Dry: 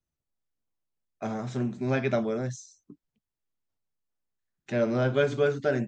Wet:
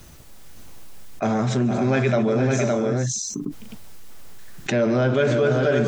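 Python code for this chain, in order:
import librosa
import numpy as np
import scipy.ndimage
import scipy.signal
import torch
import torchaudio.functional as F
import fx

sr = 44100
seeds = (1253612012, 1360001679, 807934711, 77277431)

y = fx.echo_multitap(x, sr, ms=(146, 459, 497, 562), db=(-15.5, -10.5, -14.5, -6.5))
y = fx.env_flatten(y, sr, amount_pct=70)
y = y * librosa.db_to_amplitude(2.0)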